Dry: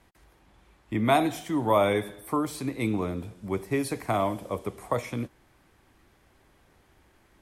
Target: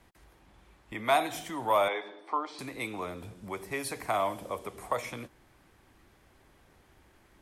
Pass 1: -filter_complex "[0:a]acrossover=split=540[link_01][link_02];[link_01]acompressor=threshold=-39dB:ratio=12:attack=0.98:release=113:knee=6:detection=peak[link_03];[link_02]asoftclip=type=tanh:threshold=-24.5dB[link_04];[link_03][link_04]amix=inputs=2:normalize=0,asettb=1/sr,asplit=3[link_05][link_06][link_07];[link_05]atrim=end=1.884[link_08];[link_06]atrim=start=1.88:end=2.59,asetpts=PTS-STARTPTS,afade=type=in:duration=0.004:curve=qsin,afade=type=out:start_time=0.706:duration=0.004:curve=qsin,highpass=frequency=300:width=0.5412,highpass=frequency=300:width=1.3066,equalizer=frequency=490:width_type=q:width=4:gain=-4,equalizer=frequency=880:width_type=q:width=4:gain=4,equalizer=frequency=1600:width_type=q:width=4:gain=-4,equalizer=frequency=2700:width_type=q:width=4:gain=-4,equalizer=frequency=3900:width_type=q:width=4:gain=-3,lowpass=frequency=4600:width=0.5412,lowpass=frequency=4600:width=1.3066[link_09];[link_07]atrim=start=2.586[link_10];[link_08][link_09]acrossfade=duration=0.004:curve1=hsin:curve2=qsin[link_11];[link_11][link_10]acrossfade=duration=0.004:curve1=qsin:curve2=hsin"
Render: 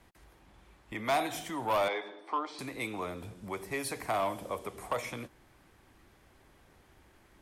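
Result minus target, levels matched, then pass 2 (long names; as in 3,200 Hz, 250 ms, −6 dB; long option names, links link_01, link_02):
soft clipping: distortion +16 dB
-filter_complex "[0:a]acrossover=split=540[link_01][link_02];[link_01]acompressor=threshold=-39dB:ratio=12:attack=0.98:release=113:knee=6:detection=peak[link_03];[link_02]asoftclip=type=tanh:threshold=-13dB[link_04];[link_03][link_04]amix=inputs=2:normalize=0,asettb=1/sr,asplit=3[link_05][link_06][link_07];[link_05]atrim=end=1.884[link_08];[link_06]atrim=start=1.88:end=2.59,asetpts=PTS-STARTPTS,afade=type=in:duration=0.004:curve=qsin,afade=type=out:start_time=0.706:duration=0.004:curve=qsin,highpass=frequency=300:width=0.5412,highpass=frequency=300:width=1.3066,equalizer=frequency=490:width_type=q:width=4:gain=-4,equalizer=frequency=880:width_type=q:width=4:gain=4,equalizer=frequency=1600:width_type=q:width=4:gain=-4,equalizer=frequency=2700:width_type=q:width=4:gain=-4,equalizer=frequency=3900:width_type=q:width=4:gain=-3,lowpass=frequency=4600:width=0.5412,lowpass=frequency=4600:width=1.3066[link_09];[link_07]atrim=start=2.586[link_10];[link_08][link_09]acrossfade=duration=0.004:curve1=hsin:curve2=qsin[link_11];[link_11][link_10]acrossfade=duration=0.004:curve1=qsin:curve2=hsin"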